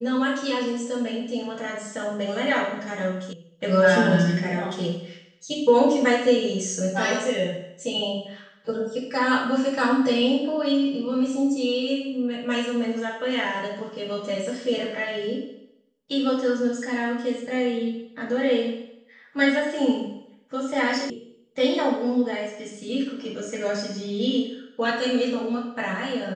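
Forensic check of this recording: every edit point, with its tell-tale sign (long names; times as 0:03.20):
0:03.33: cut off before it has died away
0:21.10: cut off before it has died away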